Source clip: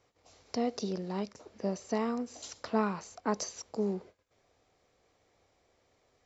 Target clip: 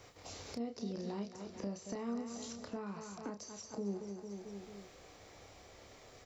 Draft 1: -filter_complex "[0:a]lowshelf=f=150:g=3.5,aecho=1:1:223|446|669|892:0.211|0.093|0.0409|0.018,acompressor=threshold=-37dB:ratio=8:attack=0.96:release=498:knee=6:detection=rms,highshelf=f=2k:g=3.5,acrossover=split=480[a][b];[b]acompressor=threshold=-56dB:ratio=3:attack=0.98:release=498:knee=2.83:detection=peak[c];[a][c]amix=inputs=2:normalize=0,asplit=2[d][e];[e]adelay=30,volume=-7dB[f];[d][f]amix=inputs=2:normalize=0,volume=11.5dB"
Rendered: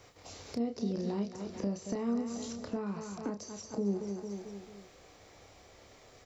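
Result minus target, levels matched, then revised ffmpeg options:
compressor: peak gain reduction -7.5 dB
-filter_complex "[0:a]lowshelf=f=150:g=3.5,aecho=1:1:223|446|669|892:0.211|0.093|0.0409|0.018,acompressor=threshold=-45.5dB:ratio=8:attack=0.96:release=498:knee=6:detection=rms,highshelf=f=2k:g=3.5,acrossover=split=480[a][b];[b]acompressor=threshold=-56dB:ratio=3:attack=0.98:release=498:knee=2.83:detection=peak[c];[a][c]amix=inputs=2:normalize=0,asplit=2[d][e];[e]adelay=30,volume=-7dB[f];[d][f]amix=inputs=2:normalize=0,volume=11.5dB"

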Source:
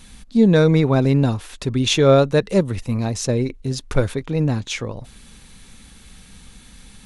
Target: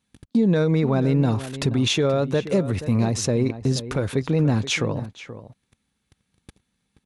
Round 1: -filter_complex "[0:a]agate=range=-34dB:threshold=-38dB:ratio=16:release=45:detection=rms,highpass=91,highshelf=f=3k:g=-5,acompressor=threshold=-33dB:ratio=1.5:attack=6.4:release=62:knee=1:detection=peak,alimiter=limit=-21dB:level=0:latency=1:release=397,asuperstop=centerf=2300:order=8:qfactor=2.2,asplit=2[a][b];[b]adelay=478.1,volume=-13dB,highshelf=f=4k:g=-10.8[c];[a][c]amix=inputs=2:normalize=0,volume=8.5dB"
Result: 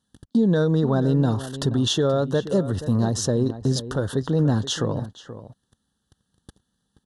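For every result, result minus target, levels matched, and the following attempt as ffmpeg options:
2000 Hz band -5.0 dB; compressor: peak gain reduction +2.5 dB
-filter_complex "[0:a]agate=range=-34dB:threshold=-38dB:ratio=16:release=45:detection=rms,highpass=91,highshelf=f=3k:g=-5,acompressor=threshold=-33dB:ratio=1.5:attack=6.4:release=62:knee=1:detection=peak,alimiter=limit=-21dB:level=0:latency=1:release=397,asplit=2[a][b];[b]adelay=478.1,volume=-13dB,highshelf=f=4k:g=-10.8[c];[a][c]amix=inputs=2:normalize=0,volume=8.5dB"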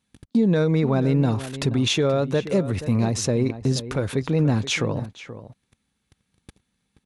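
compressor: peak gain reduction +2.5 dB
-filter_complex "[0:a]agate=range=-34dB:threshold=-38dB:ratio=16:release=45:detection=rms,highpass=91,highshelf=f=3k:g=-5,acompressor=threshold=-25dB:ratio=1.5:attack=6.4:release=62:knee=1:detection=peak,alimiter=limit=-21dB:level=0:latency=1:release=397,asplit=2[a][b];[b]adelay=478.1,volume=-13dB,highshelf=f=4k:g=-10.8[c];[a][c]amix=inputs=2:normalize=0,volume=8.5dB"

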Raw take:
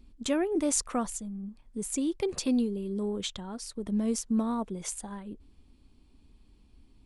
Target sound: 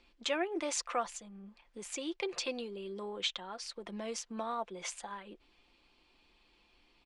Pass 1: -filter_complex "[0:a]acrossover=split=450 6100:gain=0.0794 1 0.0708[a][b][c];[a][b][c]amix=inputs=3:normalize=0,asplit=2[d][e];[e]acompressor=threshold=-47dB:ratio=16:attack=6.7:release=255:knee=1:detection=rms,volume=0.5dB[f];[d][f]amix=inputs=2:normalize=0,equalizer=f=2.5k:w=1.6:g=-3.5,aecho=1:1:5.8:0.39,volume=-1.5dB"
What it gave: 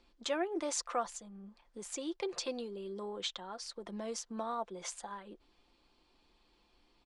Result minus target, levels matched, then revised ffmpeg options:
2000 Hz band -4.0 dB
-filter_complex "[0:a]acrossover=split=450 6100:gain=0.0794 1 0.0708[a][b][c];[a][b][c]amix=inputs=3:normalize=0,asplit=2[d][e];[e]acompressor=threshold=-47dB:ratio=16:attack=6.7:release=255:knee=1:detection=rms,volume=0.5dB[f];[d][f]amix=inputs=2:normalize=0,equalizer=f=2.5k:w=1.6:g=4.5,aecho=1:1:5.8:0.39,volume=-1.5dB"

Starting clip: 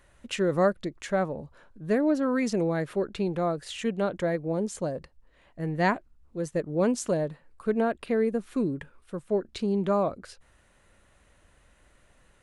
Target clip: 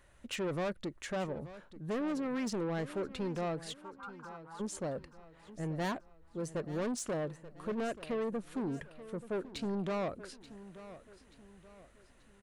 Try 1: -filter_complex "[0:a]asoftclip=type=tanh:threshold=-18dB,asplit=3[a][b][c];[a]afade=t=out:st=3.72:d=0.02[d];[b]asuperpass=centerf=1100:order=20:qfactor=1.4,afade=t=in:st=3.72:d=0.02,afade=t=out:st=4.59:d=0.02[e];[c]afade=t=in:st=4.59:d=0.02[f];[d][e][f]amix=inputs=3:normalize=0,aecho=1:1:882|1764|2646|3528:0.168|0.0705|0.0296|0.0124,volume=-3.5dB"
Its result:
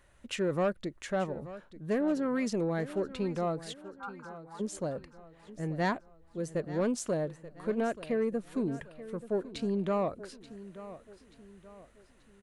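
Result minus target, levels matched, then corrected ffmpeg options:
soft clip: distortion -10 dB
-filter_complex "[0:a]asoftclip=type=tanh:threshold=-28dB,asplit=3[a][b][c];[a]afade=t=out:st=3.72:d=0.02[d];[b]asuperpass=centerf=1100:order=20:qfactor=1.4,afade=t=in:st=3.72:d=0.02,afade=t=out:st=4.59:d=0.02[e];[c]afade=t=in:st=4.59:d=0.02[f];[d][e][f]amix=inputs=3:normalize=0,aecho=1:1:882|1764|2646|3528:0.168|0.0705|0.0296|0.0124,volume=-3.5dB"

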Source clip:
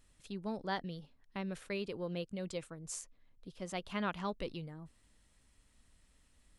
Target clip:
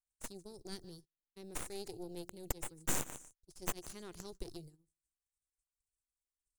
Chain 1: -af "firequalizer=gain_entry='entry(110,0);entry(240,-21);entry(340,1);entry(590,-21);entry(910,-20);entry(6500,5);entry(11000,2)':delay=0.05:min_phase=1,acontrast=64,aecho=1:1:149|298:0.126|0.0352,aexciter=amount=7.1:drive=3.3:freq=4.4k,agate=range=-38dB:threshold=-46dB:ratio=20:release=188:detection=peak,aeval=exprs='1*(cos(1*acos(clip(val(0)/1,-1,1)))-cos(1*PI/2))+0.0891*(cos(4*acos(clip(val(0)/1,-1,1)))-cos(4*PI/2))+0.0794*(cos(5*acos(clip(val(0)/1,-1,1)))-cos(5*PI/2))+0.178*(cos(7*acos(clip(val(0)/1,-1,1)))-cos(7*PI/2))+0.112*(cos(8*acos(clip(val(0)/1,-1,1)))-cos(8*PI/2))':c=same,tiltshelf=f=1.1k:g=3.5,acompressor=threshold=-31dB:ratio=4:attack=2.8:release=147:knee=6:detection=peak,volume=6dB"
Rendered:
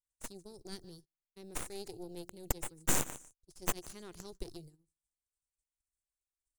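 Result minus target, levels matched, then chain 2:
compressor: peak gain reduction -5 dB
-af "firequalizer=gain_entry='entry(110,0);entry(240,-21);entry(340,1);entry(590,-21);entry(910,-20);entry(6500,5);entry(11000,2)':delay=0.05:min_phase=1,acontrast=64,aecho=1:1:149|298:0.126|0.0352,aexciter=amount=7.1:drive=3.3:freq=4.4k,agate=range=-38dB:threshold=-46dB:ratio=20:release=188:detection=peak,aeval=exprs='1*(cos(1*acos(clip(val(0)/1,-1,1)))-cos(1*PI/2))+0.0891*(cos(4*acos(clip(val(0)/1,-1,1)))-cos(4*PI/2))+0.0794*(cos(5*acos(clip(val(0)/1,-1,1)))-cos(5*PI/2))+0.178*(cos(7*acos(clip(val(0)/1,-1,1)))-cos(7*PI/2))+0.112*(cos(8*acos(clip(val(0)/1,-1,1)))-cos(8*PI/2))':c=same,tiltshelf=f=1.1k:g=3.5,acompressor=threshold=-37.5dB:ratio=4:attack=2.8:release=147:knee=6:detection=peak,volume=6dB"

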